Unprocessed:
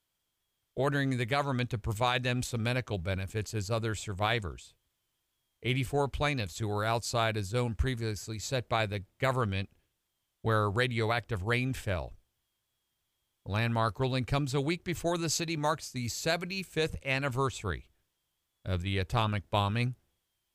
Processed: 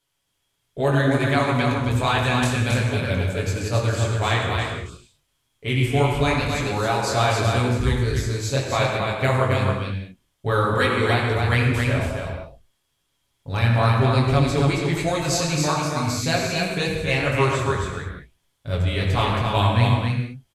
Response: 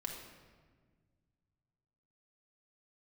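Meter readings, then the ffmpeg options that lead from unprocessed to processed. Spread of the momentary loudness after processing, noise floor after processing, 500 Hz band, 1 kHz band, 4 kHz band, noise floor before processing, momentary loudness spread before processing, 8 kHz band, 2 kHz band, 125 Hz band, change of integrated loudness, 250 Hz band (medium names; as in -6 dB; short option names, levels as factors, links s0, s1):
9 LU, -72 dBFS, +10.0 dB, +10.0 dB, +9.0 dB, -82 dBFS, 7 LU, +8.5 dB, +10.0 dB, +12.0 dB, +10.0 dB, +10.5 dB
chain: -filter_complex "[0:a]flanger=delay=19.5:depth=5.7:speed=2.3,aecho=1:1:271:0.631[s0];[1:a]atrim=start_sample=2205,afade=t=out:st=0.17:d=0.01,atrim=end_sample=7938,asetrate=24696,aresample=44100[s1];[s0][s1]afir=irnorm=-1:irlink=0,volume=2.66"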